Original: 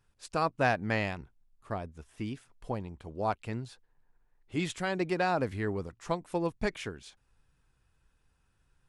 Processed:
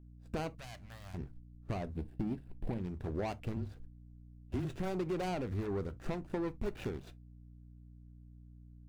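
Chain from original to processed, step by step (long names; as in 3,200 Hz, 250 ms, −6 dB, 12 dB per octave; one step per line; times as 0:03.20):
running median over 41 samples
noise gate −59 dBFS, range −18 dB
0:01.95–0:02.78: thirty-one-band graphic EQ 200 Hz +11 dB, 315 Hz +7 dB, 1,250 Hz −10 dB, 6,300 Hz −11 dB
brickwall limiter −28.5 dBFS, peak gain reduction 8.5 dB
leveller curve on the samples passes 1
downward compressor 6 to 1, threshold −45 dBFS, peak gain reduction 12.5 dB
0:00.50–0:01.14: guitar amp tone stack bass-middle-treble 10-0-10
0:03.56–0:04.65: frequency shifter −26 Hz
mains hum 60 Hz, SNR 15 dB
on a send at −12.5 dB: convolution reverb, pre-delay 3 ms
on the sum: highs frequency-modulated by the lows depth 0.12 ms
level +10 dB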